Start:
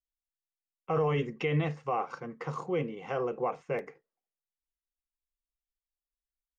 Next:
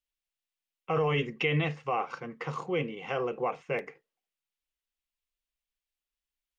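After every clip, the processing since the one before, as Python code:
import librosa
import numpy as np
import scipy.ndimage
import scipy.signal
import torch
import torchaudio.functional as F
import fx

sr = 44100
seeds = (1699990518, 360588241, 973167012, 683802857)

y = fx.peak_eq(x, sr, hz=2800.0, db=8.5, octaves=1.2)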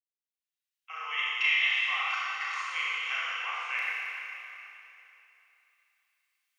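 y = fx.fade_in_head(x, sr, length_s=1.76)
y = scipy.signal.sosfilt(scipy.signal.butter(4, 1400.0, 'highpass', fs=sr, output='sos'), y)
y = fx.rev_schroeder(y, sr, rt60_s=3.0, comb_ms=26, drr_db=-6.5)
y = F.gain(torch.from_numpy(y), 3.0).numpy()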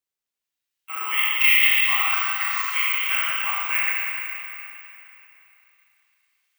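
y = (np.kron(scipy.signal.resample_poly(x, 1, 2), np.eye(2)[0]) * 2)[:len(x)]
y = F.gain(torch.from_numpy(y), 6.5).numpy()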